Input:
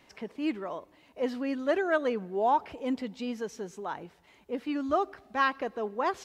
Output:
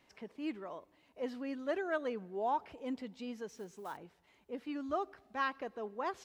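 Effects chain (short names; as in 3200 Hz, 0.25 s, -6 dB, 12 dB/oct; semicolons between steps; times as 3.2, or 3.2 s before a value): 3.48–3.98 block floating point 5-bit; gain -8.5 dB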